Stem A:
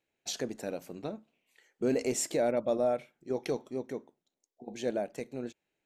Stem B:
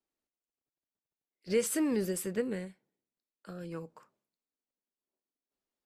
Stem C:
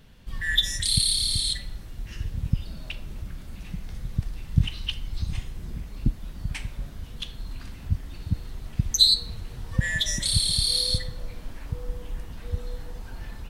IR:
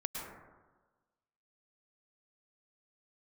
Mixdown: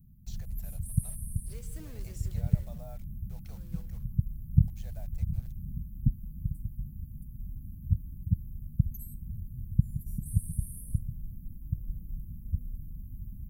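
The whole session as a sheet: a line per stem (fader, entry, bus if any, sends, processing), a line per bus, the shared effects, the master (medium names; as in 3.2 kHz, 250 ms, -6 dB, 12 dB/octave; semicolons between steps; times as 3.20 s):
-17.5 dB, 0.00 s, bus A, no send, Chebyshev high-pass 680 Hz, order 3; peaking EQ 9.2 kHz -10 dB 0.28 oct; word length cut 8-bit, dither none
-20.0 dB, 0.00 s, bus A, send -14.5 dB, bass shelf 95 Hz -10 dB; companded quantiser 4-bit
+2.5 dB, 0.00 s, no bus, no send, inverse Chebyshev band-stop 740–4700 Hz, stop band 70 dB; bass shelf 62 Hz -10 dB
bus A: 0.0 dB, treble shelf 6 kHz +10 dB; peak limiter -42 dBFS, peak gain reduction 9.5 dB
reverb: on, RT60 1.3 s, pre-delay 97 ms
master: none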